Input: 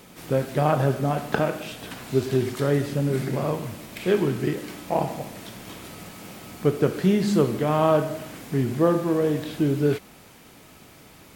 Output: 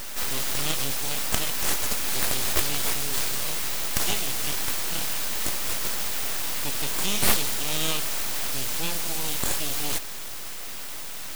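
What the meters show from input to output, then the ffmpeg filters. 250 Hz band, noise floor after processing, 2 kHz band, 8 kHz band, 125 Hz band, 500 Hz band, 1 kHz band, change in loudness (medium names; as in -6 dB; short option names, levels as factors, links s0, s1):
-14.0 dB, -33 dBFS, +3.5 dB, +16.5 dB, -13.0 dB, -14.5 dB, -5.5 dB, -2.0 dB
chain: -af "aeval=exprs='(tanh(6.31*val(0)+0.2)-tanh(0.2))/6.31':c=same,aexciter=amount=13.2:drive=7.5:freq=2600,aeval=exprs='abs(val(0))':c=same,volume=0.562"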